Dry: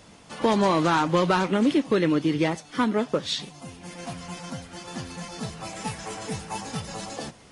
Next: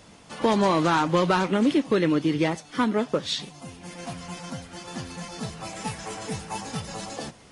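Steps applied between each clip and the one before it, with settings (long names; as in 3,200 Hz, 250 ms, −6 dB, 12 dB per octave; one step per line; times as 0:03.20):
no processing that can be heard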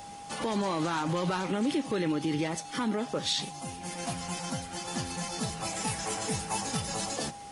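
brickwall limiter −22 dBFS, peak gain reduction 11.5 dB
steady tone 810 Hz −43 dBFS
high-shelf EQ 6,500 Hz +10.5 dB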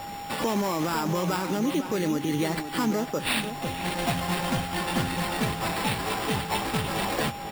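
speech leveller within 4 dB 0.5 s
decimation without filtering 7×
slap from a distant wall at 86 metres, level −9 dB
level +4.5 dB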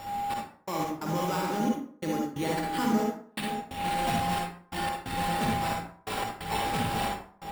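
gate pattern "xx..x.xx" 89 BPM −60 dB
convolution reverb RT60 0.55 s, pre-delay 42 ms, DRR −0.5 dB
level −5.5 dB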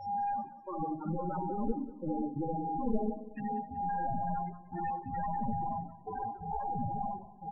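wavefolder on the positive side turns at −29.5 dBFS
spectral peaks only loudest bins 8
repeating echo 188 ms, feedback 50%, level −17 dB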